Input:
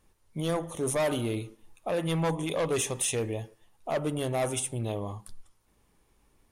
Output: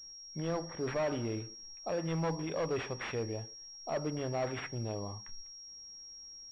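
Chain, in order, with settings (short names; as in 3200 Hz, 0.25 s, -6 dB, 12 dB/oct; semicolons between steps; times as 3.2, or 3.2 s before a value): pulse-width modulation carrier 5600 Hz; gain -5.5 dB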